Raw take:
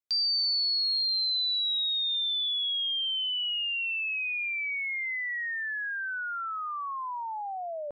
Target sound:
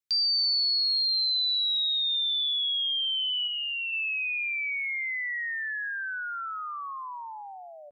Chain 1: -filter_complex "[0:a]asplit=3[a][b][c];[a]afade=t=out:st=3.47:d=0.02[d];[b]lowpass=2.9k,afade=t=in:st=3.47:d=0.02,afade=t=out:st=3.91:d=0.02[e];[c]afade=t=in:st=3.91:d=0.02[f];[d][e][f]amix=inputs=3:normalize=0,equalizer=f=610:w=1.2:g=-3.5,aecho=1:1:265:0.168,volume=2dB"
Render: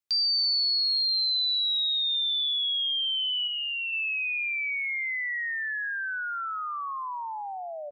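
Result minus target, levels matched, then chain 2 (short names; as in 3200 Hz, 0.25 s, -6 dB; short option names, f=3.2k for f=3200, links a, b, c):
500 Hz band +9.0 dB
-filter_complex "[0:a]asplit=3[a][b][c];[a]afade=t=out:st=3.47:d=0.02[d];[b]lowpass=2.9k,afade=t=in:st=3.47:d=0.02,afade=t=out:st=3.91:d=0.02[e];[c]afade=t=in:st=3.91:d=0.02[f];[d][e][f]amix=inputs=3:normalize=0,equalizer=f=610:w=1.2:g=-13,aecho=1:1:265:0.168,volume=2dB"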